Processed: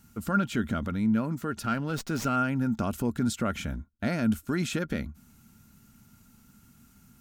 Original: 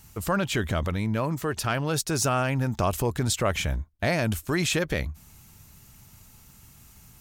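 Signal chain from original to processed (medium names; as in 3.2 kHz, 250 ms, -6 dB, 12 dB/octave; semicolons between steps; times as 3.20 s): small resonant body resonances 230/1400 Hz, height 16 dB, ringing for 45 ms; 1.62–2.36 s: sliding maximum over 3 samples; trim -9 dB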